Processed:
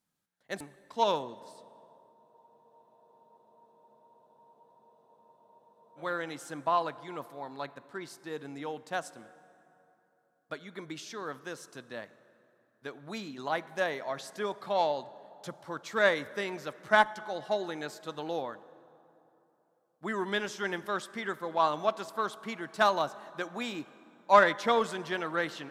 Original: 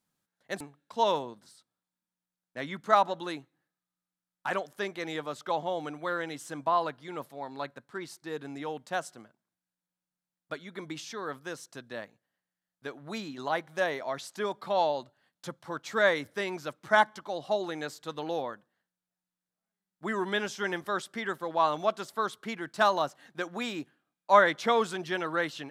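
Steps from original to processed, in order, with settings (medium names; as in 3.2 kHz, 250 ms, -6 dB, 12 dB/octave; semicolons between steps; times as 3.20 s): plate-style reverb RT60 3.3 s, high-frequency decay 0.55×, DRR 16 dB; Chebyshev shaper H 7 -30 dB, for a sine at -7 dBFS; spectral freeze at 2.16 s, 3.82 s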